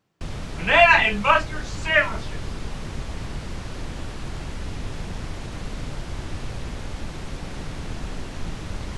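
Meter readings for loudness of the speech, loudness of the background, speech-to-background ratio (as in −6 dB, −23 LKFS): −17.5 LKFS, −34.5 LKFS, 17.0 dB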